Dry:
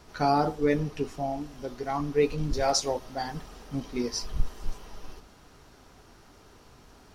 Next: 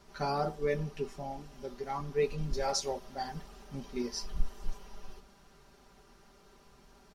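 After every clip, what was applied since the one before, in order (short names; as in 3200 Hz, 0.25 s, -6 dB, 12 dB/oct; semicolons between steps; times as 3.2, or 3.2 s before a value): comb 5.1 ms, depth 71%; gain -7.5 dB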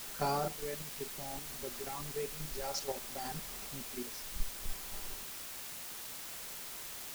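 level quantiser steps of 11 dB; tremolo 0.6 Hz, depth 70%; requantised 8-bit, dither triangular; gain +3 dB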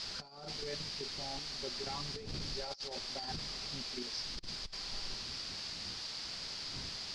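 wind noise 200 Hz -51 dBFS; ladder low-pass 5100 Hz, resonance 75%; negative-ratio compressor -50 dBFS, ratio -0.5; gain +10 dB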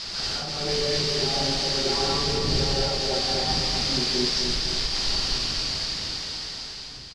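ending faded out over 2.18 s; feedback echo 0.256 s, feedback 48%, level -6 dB; non-linear reverb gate 0.25 s rising, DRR -6.5 dB; gain +7.5 dB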